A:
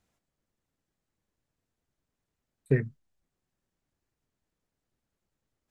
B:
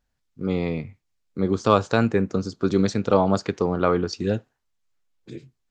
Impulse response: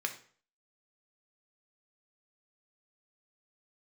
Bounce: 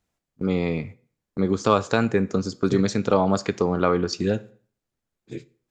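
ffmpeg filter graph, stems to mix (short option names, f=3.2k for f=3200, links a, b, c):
-filter_complex "[0:a]volume=-1dB[a];[1:a]agate=range=-16dB:threshold=-39dB:ratio=16:detection=peak,equalizer=f=7.1k:w=4:g=5.5,volume=2dB,asplit=2[b][c];[c]volume=-11dB[d];[2:a]atrim=start_sample=2205[e];[d][e]afir=irnorm=-1:irlink=0[f];[a][b][f]amix=inputs=3:normalize=0,acompressor=threshold=-23dB:ratio=1.5"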